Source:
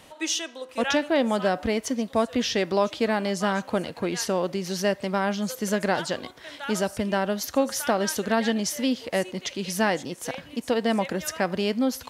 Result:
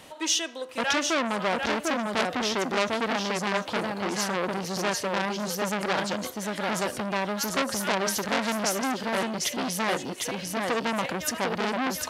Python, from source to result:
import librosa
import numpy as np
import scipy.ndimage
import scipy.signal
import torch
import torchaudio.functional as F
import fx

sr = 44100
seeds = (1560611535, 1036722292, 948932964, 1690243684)

p1 = fx.low_shelf(x, sr, hz=69.0, db=-7.5)
p2 = p1 + fx.echo_single(p1, sr, ms=748, db=-4.5, dry=0)
p3 = fx.transformer_sat(p2, sr, knee_hz=4000.0)
y = F.gain(torch.from_numpy(p3), 2.5).numpy()